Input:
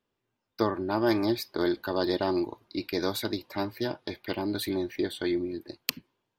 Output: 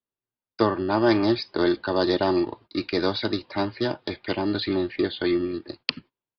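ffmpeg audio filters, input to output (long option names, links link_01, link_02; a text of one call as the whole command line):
ffmpeg -i in.wav -filter_complex "[0:a]agate=range=-20dB:threshold=-51dB:ratio=16:detection=peak,acrossover=split=230[link_01][link_02];[link_01]acrusher=samples=29:mix=1:aa=0.000001[link_03];[link_03][link_02]amix=inputs=2:normalize=0,aresample=11025,aresample=44100,volume=5.5dB" out.wav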